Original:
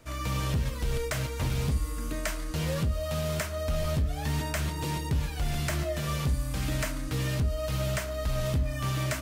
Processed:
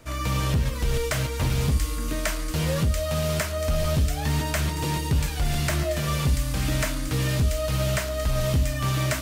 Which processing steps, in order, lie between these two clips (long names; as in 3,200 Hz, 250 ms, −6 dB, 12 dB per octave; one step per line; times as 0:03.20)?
delay with a high-pass on its return 686 ms, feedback 52%, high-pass 3,000 Hz, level −4.5 dB
level +5 dB